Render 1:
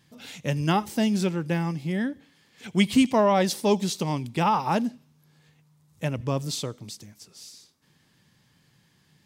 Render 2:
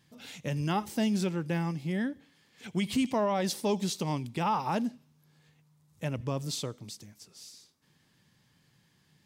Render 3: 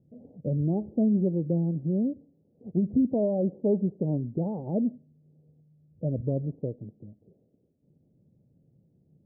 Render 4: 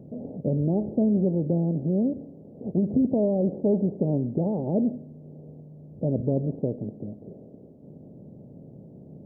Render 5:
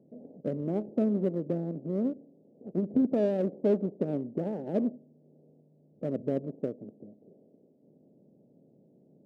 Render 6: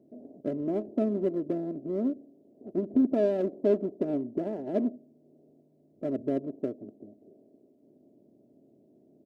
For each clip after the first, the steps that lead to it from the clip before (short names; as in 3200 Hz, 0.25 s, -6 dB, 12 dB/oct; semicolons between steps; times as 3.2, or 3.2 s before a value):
limiter -16 dBFS, peak gain reduction 8.5 dB; gain -4 dB
steep low-pass 620 Hz 48 dB/oct; gain +5 dB
per-bin compression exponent 0.6
Wiener smoothing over 25 samples; HPF 230 Hz 12 dB/oct; upward expander 1.5:1, over -42 dBFS
comb 3 ms, depth 59%